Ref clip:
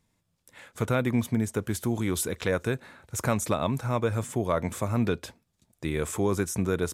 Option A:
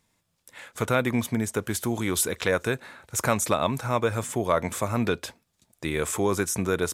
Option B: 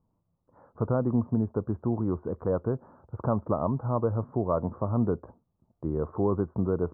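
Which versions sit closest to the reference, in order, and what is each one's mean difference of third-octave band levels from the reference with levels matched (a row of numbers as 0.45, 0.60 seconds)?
A, B; 3.0, 11.5 decibels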